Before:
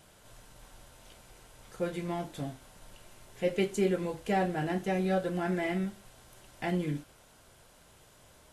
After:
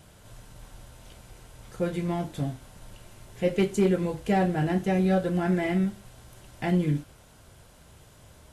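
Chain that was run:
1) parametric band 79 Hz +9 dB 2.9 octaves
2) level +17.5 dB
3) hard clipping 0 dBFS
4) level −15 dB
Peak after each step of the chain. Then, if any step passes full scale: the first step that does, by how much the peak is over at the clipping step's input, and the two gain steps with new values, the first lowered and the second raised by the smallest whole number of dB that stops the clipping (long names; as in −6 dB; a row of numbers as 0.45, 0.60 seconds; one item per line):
−13.5, +4.0, 0.0, −15.0 dBFS
step 2, 4.0 dB
step 2 +13.5 dB, step 4 −11 dB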